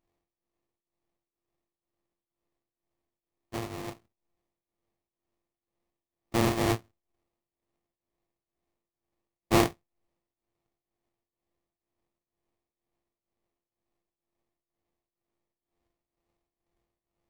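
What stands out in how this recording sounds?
a buzz of ramps at a fixed pitch in blocks of 128 samples
tremolo triangle 2.1 Hz, depth 85%
aliases and images of a low sample rate 1,500 Hz, jitter 20%

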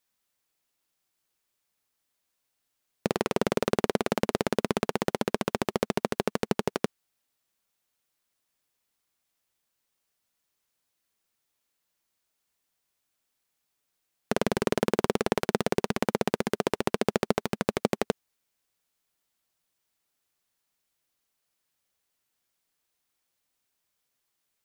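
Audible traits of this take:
background noise floor −80 dBFS
spectral slope −5.0 dB per octave

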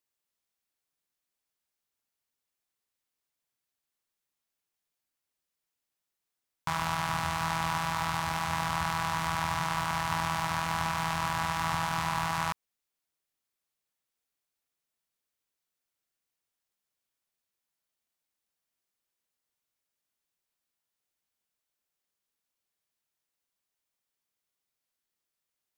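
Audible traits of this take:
background noise floor −87 dBFS
spectral slope −3.5 dB per octave

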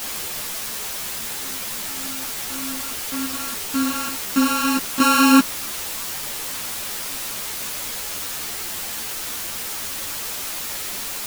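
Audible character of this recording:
a buzz of ramps at a fixed pitch in blocks of 32 samples
chopped level 1.2 Hz, depth 65%, duty 90%
a quantiser's noise floor 6 bits, dither triangular
a shimmering, thickened sound

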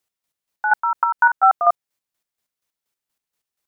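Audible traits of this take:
chopped level 4.2 Hz, depth 60%, duty 35%

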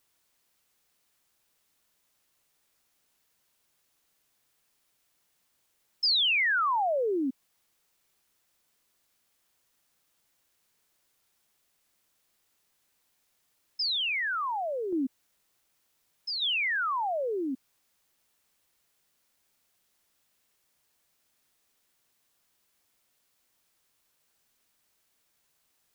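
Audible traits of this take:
tremolo saw down 0.67 Hz, depth 45%
a quantiser's noise floor 12 bits, dither triangular

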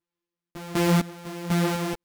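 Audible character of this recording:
a buzz of ramps at a fixed pitch in blocks of 256 samples
sample-and-hold tremolo 4 Hz, depth 90%
a shimmering, thickened sound

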